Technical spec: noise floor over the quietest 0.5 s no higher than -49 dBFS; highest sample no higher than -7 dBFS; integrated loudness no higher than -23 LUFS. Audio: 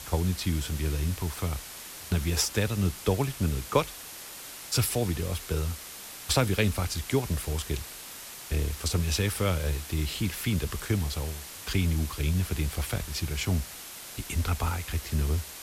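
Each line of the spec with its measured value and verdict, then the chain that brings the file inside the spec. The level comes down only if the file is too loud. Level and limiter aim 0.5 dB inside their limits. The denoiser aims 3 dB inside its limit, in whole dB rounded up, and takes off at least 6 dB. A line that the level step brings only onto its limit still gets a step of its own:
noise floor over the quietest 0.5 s -43 dBFS: fail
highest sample -8.0 dBFS: pass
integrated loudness -29.5 LUFS: pass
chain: noise reduction 9 dB, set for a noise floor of -43 dBFS

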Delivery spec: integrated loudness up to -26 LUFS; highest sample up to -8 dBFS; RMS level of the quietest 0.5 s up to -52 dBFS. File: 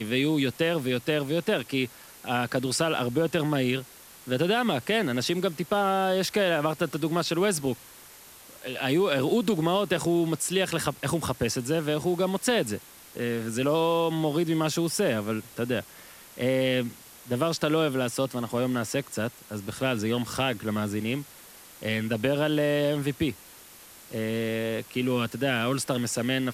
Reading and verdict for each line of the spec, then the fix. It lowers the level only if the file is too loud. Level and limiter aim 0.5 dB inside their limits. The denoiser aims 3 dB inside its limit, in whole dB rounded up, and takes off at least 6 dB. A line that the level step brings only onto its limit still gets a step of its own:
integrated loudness -27.0 LUFS: pass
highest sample -12.0 dBFS: pass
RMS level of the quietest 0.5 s -49 dBFS: fail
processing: noise reduction 6 dB, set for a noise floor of -49 dBFS

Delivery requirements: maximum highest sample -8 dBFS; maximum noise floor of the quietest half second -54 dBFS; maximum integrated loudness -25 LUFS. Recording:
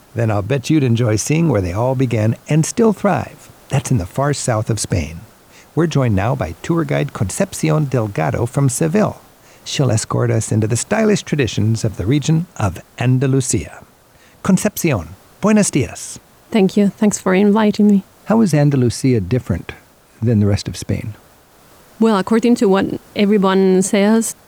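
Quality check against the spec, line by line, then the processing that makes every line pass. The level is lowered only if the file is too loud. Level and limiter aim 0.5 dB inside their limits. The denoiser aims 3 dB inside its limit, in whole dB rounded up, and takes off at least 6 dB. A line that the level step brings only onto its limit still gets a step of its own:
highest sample -4.5 dBFS: fail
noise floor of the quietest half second -48 dBFS: fail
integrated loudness -16.5 LUFS: fail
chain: trim -9 dB

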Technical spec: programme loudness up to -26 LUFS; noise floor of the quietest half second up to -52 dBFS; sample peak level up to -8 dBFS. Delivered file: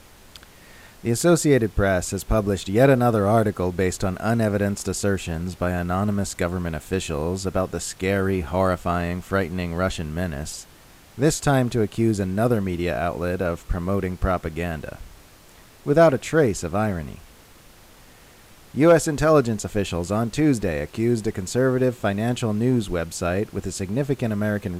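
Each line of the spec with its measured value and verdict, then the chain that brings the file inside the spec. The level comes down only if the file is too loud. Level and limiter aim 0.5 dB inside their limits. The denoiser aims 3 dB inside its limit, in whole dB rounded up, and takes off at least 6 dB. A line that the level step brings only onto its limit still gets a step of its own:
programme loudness -22.5 LUFS: fail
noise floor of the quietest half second -49 dBFS: fail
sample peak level -5.0 dBFS: fail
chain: trim -4 dB

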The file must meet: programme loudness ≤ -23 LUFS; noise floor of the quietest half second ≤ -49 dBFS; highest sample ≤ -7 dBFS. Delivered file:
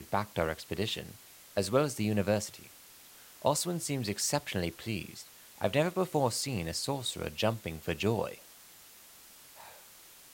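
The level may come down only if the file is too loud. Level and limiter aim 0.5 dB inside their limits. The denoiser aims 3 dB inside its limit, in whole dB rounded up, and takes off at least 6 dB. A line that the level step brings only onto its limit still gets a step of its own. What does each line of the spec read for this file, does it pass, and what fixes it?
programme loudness -32.5 LUFS: pass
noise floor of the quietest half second -55 dBFS: pass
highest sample -13.0 dBFS: pass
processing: none needed

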